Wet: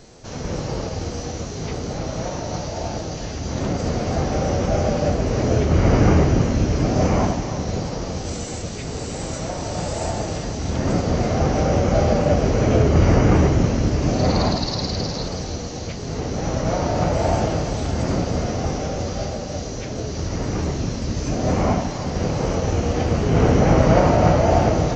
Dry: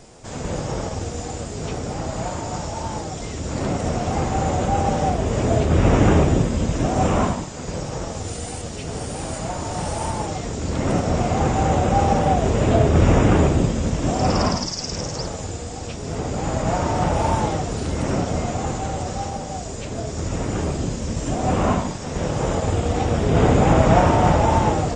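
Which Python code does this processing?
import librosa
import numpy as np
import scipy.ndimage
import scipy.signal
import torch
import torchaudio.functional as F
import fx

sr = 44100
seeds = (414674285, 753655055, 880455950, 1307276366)

y = fx.formant_shift(x, sr, semitones=-3)
y = fx.echo_split(y, sr, split_hz=660.0, low_ms=554, high_ms=322, feedback_pct=52, wet_db=-9.5)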